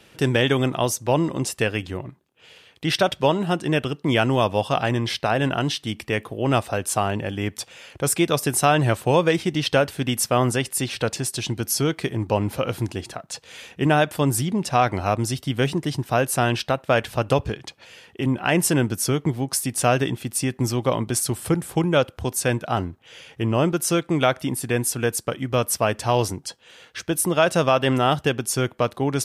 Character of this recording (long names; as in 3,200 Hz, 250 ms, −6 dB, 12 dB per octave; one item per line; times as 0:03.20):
background noise floor −54 dBFS
spectral slope −4.5 dB per octave